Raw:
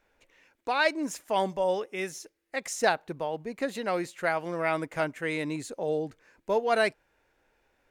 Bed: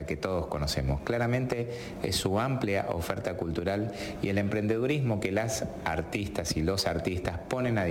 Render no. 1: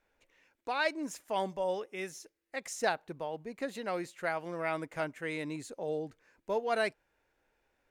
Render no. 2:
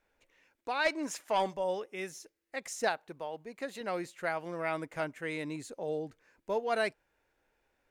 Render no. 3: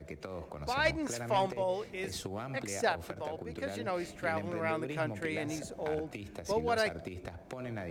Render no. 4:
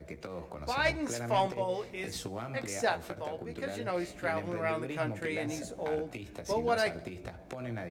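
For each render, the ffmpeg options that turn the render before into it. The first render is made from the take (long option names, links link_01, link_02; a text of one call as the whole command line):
ffmpeg -i in.wav -af "volume=-6dB" out.wav
ffmpeg -i in.wav -filter_complex "[0:a]asplit=3[link_01][link_02][link_03];[link_01]afade=type=out:start_time=0.84:duration=0.02[link_04];[link_02]asplit=2[link_05][link_06];[link_06]highpass=frequency=720:poles=1,volume=13dB,asoftclip=type=tanh:threshold=-18dB[link_07];[link_05][link_07]amix=inputs=2:normalize=0,lowpass=frequency=5200:poles=1,volume=-6dB,afade=type=in:start_time=0.84:duration=0.02,afade=type=out:start_time=1.53:duration=0.02[link_08];[link_03]afade=type=in:start_time=1.53:duration=0.02[link_09];[link_04][link_08][link_09]amix=inputs=3:normalize=0,asettb=1/sr,asplit=3[link_10][link_11][link_12];[link_10]atrim=end=2.884[link_13];[link_11]atrim=start=2.88:end=3.81,asetpts=PTS-STARTPTS,afade=type=in:duration=0.004:curve=qsin,afade=type=out:start_time=0.926:duration=0.004:curve=qsin,lowshelf=frequency=300:gain=-7.5[link_14];[link_12]atrim=start=3.806[link_15];[link_13][link_14]acrossfade=duration=0.004:curve1=hsin:curve2=qsin[link_16];[link_16][link_15]acrossfade=duration=0.004:curve1=qsin:curve2=hsin" out.wav
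ffmpeg -i in.wav -i bed.wav -filter_complex "[1:a]volume=-12dB[link_01];[0:a][link_01]amix=inputs=2:normalize=0" out.wav
ffmpeg -i in.wav -filter_complex "[0:a]asplit=2[link_01][link_02];[link_02]adelay=17,volume=-7dB[link_03];[link_01][link_03]amix=inputs=2:normalize=0,aecho=1:1:72|144|216|288:0.0708|0.0396|0.0222|0.0124" out.wav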